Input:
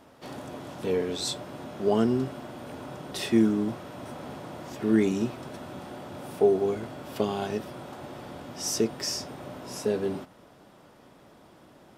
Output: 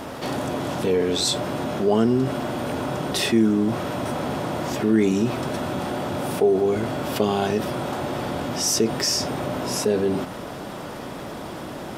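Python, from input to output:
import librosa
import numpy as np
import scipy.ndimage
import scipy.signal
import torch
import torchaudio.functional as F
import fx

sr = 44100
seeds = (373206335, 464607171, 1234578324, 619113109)

y = fx.env_flatten(x, sr, amount_pct=50)
y = y * librosa.db_to_amplitude(1.5)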